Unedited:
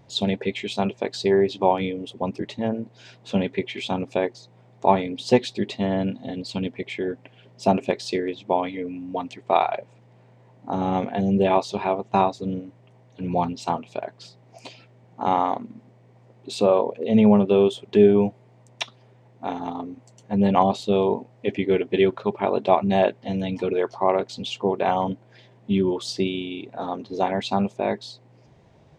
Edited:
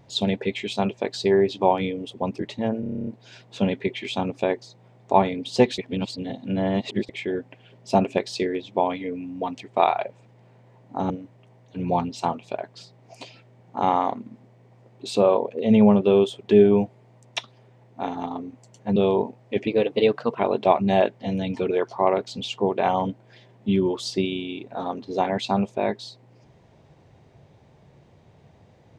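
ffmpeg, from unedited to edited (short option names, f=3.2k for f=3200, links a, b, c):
-filter_complex "[0:a]asplit=16[a][b][c][d][e][f][g][h][i][j][k][l][m][n][o][p];[a]atrim=end=2.832[q];[b]atrim=start=2.798:end=2.832[r];[c]atrim=start=2.798:end=2.832[s];[d]atrim=start=2.798:end=2.832[t];[e]atrim=start=2.798:end=2.832[u];[f]atrim=start=2.798:end=2.832[v];[g]atrim=start=2.798:end=2.832[w];[h]atrim=start=2.798:end=2.832[x];[i]atrim=start=2.798:end=2.832[y];[j]atrim=start=2.798:end=5.512[z];[k]atrim=start=5.508:end=6.822,asetpts=PTS-STARTPTS,areverse[aa];[l]atrim=start=6.818:end=10.832[ab];[m]atrim=start=12.538:end=20.402[ac];[n]atrim=start=20.878:end=21.594[ad];[o]atrim=start=21.59:end=22.42,asetpts=PTS-STARTPTS,asetrate=50274,aresample=44100[ae];[p]atrim=start=22.416[af];[q][r]acrossfade=d=0.004:c1=hsin:c2=hsin[ag];[ag][s]acrossfade=d=0.004:c1=hsin:c2=hsin[ah];[ah][t]acrossfade=d=0.004:c1=hsin:c2=hsin[ai];[ai][u]acrossfade=d=0.004:c1=hsin:c2=hsin[aj];[aj][v]acrossfade=d=0.004:c1=hsin:c2=hsin[ak];[ak][w]acrossfade=d=0.004:c1=hsin:c2=hsin[al];[al][x]acrossfade=d=0.004:c1=hsin:c2=hsin[am];[am][y]acrossfade=d=0.004:c1=hsin:c2=hsin[an];[an][z]acrossfade=d=0.004:c1=hsin:c2=hsin[ao];[ao][aa]acrossfade=d=0.004:c1=hsin:c2=hsin[ap];[ap][ab]acrossfade=d=0.004:c1=hsin:c2=hsin[aq];[aq][ac]acrossfade=d=0.004:c1=hsin:c2=hsin[ar];[ar][ad]acrossfade=d=0.004:c1=hsin:c2=hsin[as];[as][ae]acrossfade=d=0.004:c1=hsin:c2=hsin[at];[at][af]acrossfade=d=0.004:c1=hsin:c2=hsin"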